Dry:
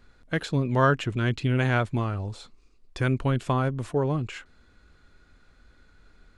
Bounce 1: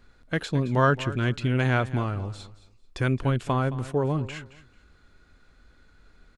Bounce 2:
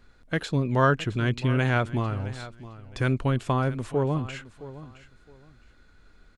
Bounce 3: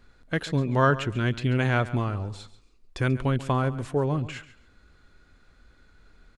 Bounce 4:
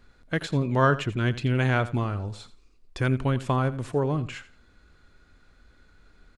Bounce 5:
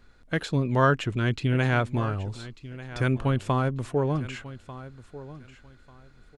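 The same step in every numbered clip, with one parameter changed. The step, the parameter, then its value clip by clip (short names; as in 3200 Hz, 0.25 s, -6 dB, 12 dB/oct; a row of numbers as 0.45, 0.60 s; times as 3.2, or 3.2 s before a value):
feedback echo, time: 219, 665, 138, 85, 1193 ms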